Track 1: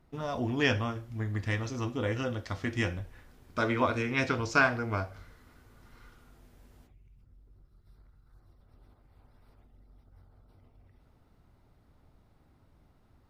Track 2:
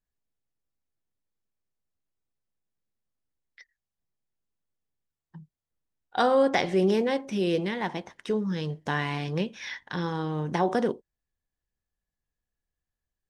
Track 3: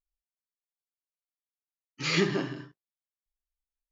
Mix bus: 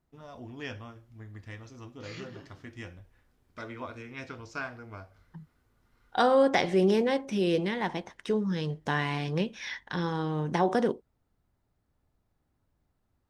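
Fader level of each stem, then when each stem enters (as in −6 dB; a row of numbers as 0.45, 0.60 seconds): −12.5, −0.5, −18.5 decibels; 0.00, 0.00, 0.00 seconds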